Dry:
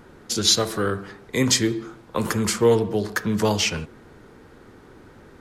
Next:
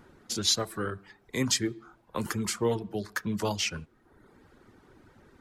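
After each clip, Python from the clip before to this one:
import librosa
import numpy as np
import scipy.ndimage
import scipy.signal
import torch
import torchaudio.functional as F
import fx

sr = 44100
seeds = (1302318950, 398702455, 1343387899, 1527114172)

y = fx.dereverb_blind(x, sr, rt60_s=0.81)
y = fx.peak_eq(y, sr, hz=470.0, db=-4.0, octaves=0.3)
y = y * 10.0 ** (-7.0 / 20.0)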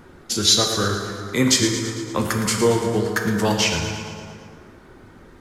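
y = fx.echo_feedback(x, sr, ms=113, feedback_pct=60, wet_db=-10.5)
y = fx.rev_plate(y, sr, seeds[0], rt60_s=2.3, hf_ratio=0.55, predelay_ms=0, drr_db=2.5)
y = y * 10.0 ** (8.5 / 20.0)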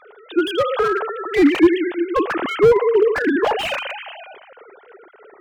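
y = fx.sine_speech(x, sr)
y = fx.slew_limit(y, sr, full_power_hz=100.0)
y = y * 10.0 ** (5.0 / 20.0)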